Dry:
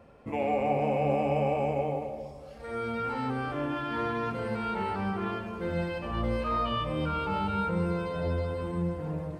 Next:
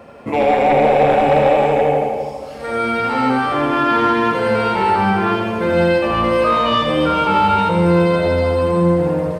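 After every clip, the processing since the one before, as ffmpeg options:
-af "highpass=f=230:p=1,aeval=exprs='0.15*sin(PI/2*1.78*val(0)/0.15)':c=same,aecho=1:1:81|162|243|324|405|486|567|648:0.531|0.313|0.185|0.109|0.0643|0.038|0.0224|0.0132,volume=7dB"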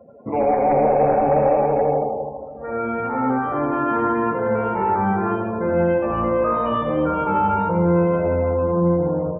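-af "lowpass=1.3k,afftdn=nr=24:nf=-36,volume=-3.5dB"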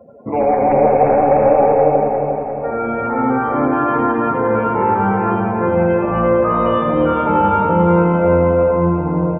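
-af "aecho=1:1:352|704|1056|1408|1760|2112|2464:0.562|0.298|0.158|0.0837|0.0444|0.0235|0.0125,volume=3.5dB"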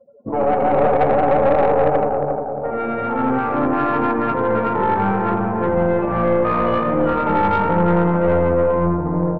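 -af "afftdn=nr=17:nf=-29,aeval=exprs='(tanh(2.82*val(0)+0.5)-tanh(0.5))/2.82':c=same"

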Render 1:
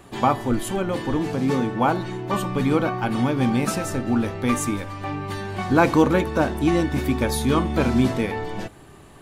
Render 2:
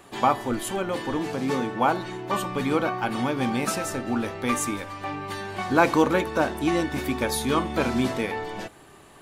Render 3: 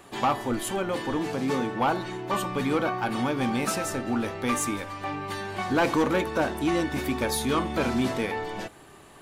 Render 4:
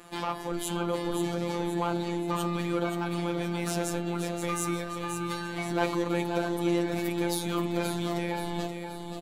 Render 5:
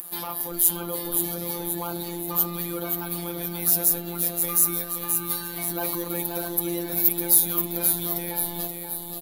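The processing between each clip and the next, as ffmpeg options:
-af "lowshelf=f=240:g=-11"
-af "asoftclip=type=tanh:threshold=-16.5dB"
-af "alimiter=limit=-22.5dB:level=0:latency=1:release=165,afftfilt=real='hypot(re,im)*cos(PI*b)':imag='0':win_size=1024:overlap=0.75,aecho=1:1:528|1056|1584|2112|2640:0.447|0.205|0.0945|0.0435|0.02,volume=2.5dB"
-af "aexciter=amount=10.1:drive=7.9:freq=11k,asoftclip=type=tanh:threshold=-14dB,aexciter=amount=3.4:drive=2.7:freq=3.7k,volume=-2.5dB"

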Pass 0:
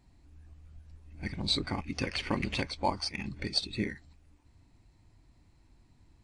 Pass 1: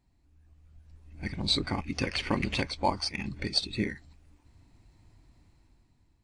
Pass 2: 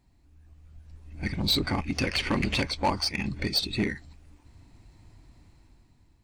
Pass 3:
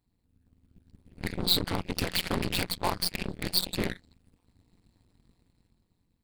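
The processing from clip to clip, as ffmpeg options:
-af "dynaudnorm=f=390:g=5:m=11.5dB,volume=-8dB"
-af "asoftclip=type=tanh:threshold=-23.5dB,volume=5.5dB"
-af "tremolo=f=180:d=1,aeval=exprs='0.126*(cos(1*acos(clip(val(0)/0.126,-1,1)))-cos(1*PI/2))+0.0112*(cos(7*acos(clip(val(0)/0.126,-1,1)))-cos(7*PI/2))+0.02*(cos(8*acos(clip(val(0)/0.126,-1,1)))-cos(8*PI/2))':c=same,aexciter=amount=1.4:drive=4.4:freq=3.4k"

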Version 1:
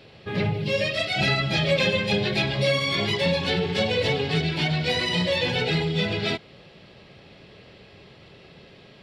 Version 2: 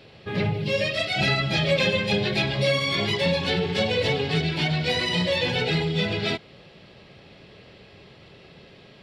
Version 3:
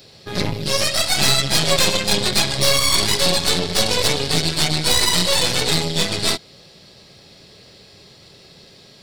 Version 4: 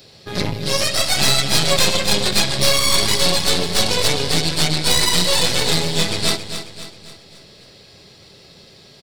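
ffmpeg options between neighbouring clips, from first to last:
-af anull
-af "aexciter=amount=7.7:drive=3.4:freq=4.1k,aeval=exprs='0.562*(cos(1*acos(clip(val(0)/0.562,-1,1)))-cos(1*PI/2))+0.158*(cos(6*acos(clip(val(0)/0.562,-1,1)))-cos(6*PI/2))':c=same"
-af "aecho=1:1:269|538|807|1076|1345:0.316|0.149|0.0699|0.0328|0.0154"

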